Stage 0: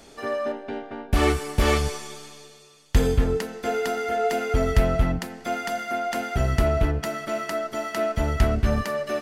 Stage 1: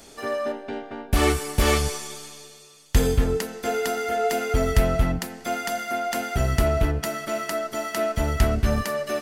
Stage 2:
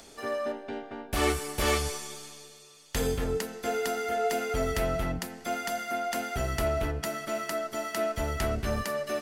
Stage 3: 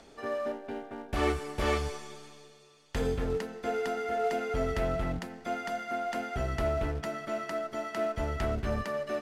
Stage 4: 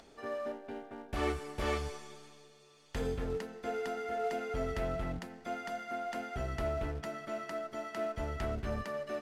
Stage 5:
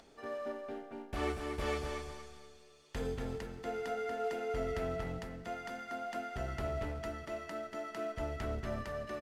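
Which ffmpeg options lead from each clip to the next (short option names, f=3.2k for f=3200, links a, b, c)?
-af "highshelf=f=5.9k:g=9"
-filter_complex "[0:a]acrossover=split=320|7300[a][b][c];[a]asoftclip=type=tanh:threshold=-24dB[d];[b]acompressor=mode=upward:threshold=-46dB:ratio=2.5[e];[d][e][c]amix=inputs=3:normalize=0,volume=-4.5dB"
-af "acrusher=bits=4:mode=log:mix=0:aa=0.000001,aemphasis=mode=reproduction:type=75fm,volume=-2dB"
-af "acompressor=mode=upward:threshold=-50dB:ratio=2.5,volume=-5dB"
-af "aecho=1:1:237|474|711|948:0.473|0.147|0.0455|0.0141,volume=-2.5dB"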